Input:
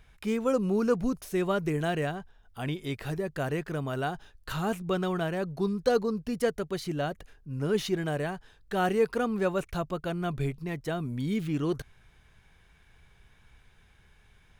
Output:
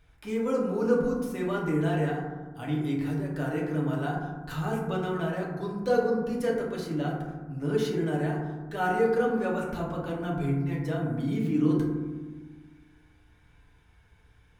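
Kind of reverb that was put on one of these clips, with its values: FDN reverb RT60 1.3 s, low-frequency decay 1.6×, high-frequency decay 0.3×, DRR -4.5 dB; gain -7 dB

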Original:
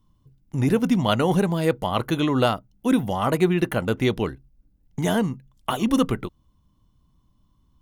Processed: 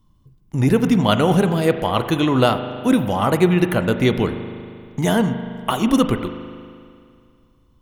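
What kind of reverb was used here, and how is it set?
spring tank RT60 2.3 s, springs 39 ms, chirp 65 ms, DRR 8.5 dB; gain +4 dB

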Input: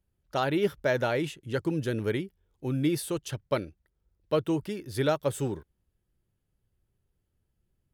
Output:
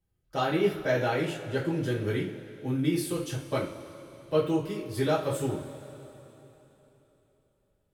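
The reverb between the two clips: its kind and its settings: two-slope reverb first 0.34 s, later 3.6 s, from -19 dB, DRR -6.5 dB; gain -7 dB

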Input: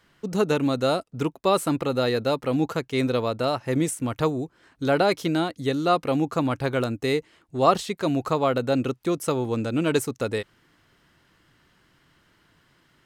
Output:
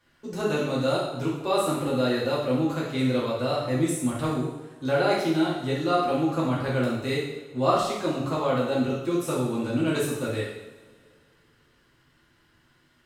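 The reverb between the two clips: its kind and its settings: two-slope reverb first 0.83 s, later 2.5 s, from -19 dB, DRR -7 dB; gain -9.5 dB

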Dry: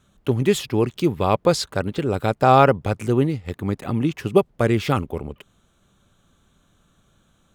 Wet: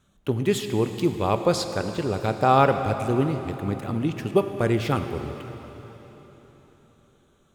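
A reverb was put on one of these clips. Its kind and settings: plate-style reverb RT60 4.1 s, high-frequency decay 0.9×, DRR 7 dB; gain -4 dB

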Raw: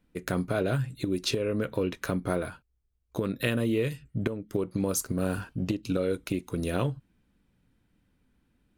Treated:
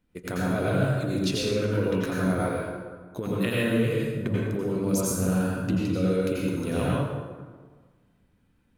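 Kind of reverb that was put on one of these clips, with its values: plate-style reverb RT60 1.5 s, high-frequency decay 0.6×, pre-delay 75 ms, DRR -6 dB; gain -3.5 dB

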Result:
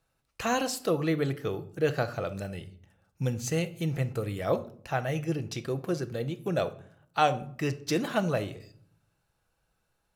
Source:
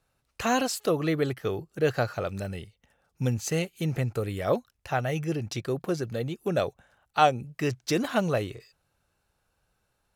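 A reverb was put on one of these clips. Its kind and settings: shoebox room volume 820 m³, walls furnished, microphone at 0.69 m; gain -2.5 dB

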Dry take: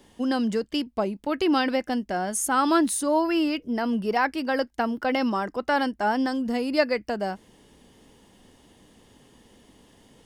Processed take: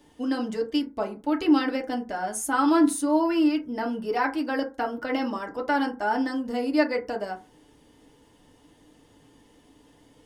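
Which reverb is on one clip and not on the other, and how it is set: FDN reverb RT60 0.3 s, low-frequency decay 0.9×, high-frequency decay 0.4×, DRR 0.5 dB; gain -5 dB

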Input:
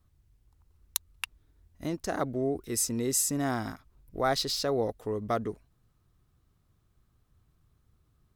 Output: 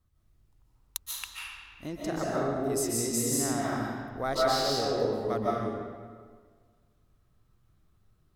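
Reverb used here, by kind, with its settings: digital reverb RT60 1.7 s, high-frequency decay 0.75×, pre-delay 0.105 s, DRR -5.5 dB; gain -5 dB

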